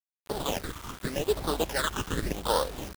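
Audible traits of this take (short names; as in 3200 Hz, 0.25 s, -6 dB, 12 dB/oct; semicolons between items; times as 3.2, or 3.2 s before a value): aliases and images of a low sample rate 2300 Hz, jitter 20%; phasing stages 8, 0.87 Hz, lowest notch 590–2300 Hz; a quantiser's noise floor 8-bit, dither none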